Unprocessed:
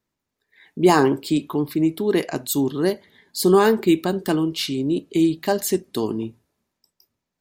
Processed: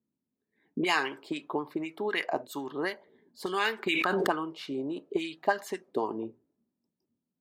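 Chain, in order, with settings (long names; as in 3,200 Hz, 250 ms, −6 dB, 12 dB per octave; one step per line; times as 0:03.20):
high-shelf EQ 11,000 Hz +8.5 dB
envelope filter 230–2,400 Hz, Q 2.2, up, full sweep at −14 dBFS
0:03.86–0:04.27: envelope flattener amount 100%
level +3 dB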